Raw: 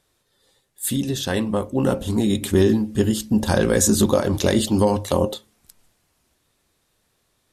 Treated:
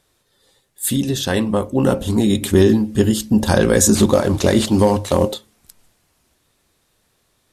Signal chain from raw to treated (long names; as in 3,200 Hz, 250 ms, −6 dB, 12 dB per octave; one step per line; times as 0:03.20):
0:03.95–0:05.33: variable-slope delta modulation 64 kbit/s
level +4 dB